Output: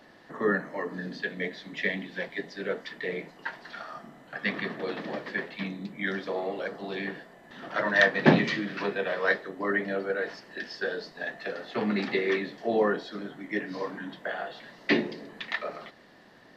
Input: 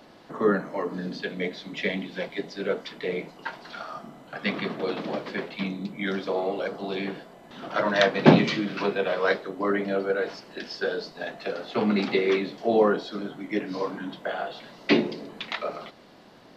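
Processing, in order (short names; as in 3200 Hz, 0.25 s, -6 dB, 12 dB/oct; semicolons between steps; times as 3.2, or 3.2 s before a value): bell 1800 Hz +13.5 dB 0.21 oct; gain -4.5 dB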